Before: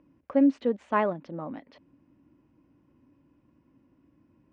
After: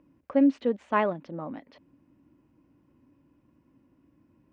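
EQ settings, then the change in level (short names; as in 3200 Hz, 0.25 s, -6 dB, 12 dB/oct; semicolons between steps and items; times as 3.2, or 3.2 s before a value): dynamic EQ 3100 Hz, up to +4 dB, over -47 dBFS, Q 1.1; 0.0 dB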